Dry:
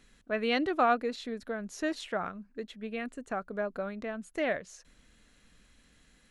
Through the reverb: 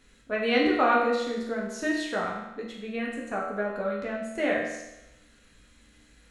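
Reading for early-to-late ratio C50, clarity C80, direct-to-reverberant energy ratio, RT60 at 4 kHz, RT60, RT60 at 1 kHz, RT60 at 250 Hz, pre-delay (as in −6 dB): 2.5 dB, 5.5 dB, −3.5 dB, 0.90 s, 0.95 s, 0.95 s, 0.95 s, 6 ms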